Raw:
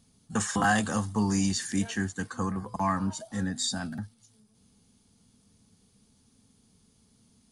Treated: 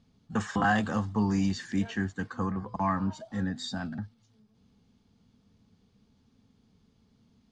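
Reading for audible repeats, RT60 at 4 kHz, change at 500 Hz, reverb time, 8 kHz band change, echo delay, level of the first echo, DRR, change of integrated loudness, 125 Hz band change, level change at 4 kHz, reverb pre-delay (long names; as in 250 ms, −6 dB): no echo audible, no reverb audible, −0.5 dB, no reverb audible, −14.5 dB, no echo audible, no echo audible, no reverb audible, −1.0 dB, 0.0 dB, −6.0 dB, no reverb audible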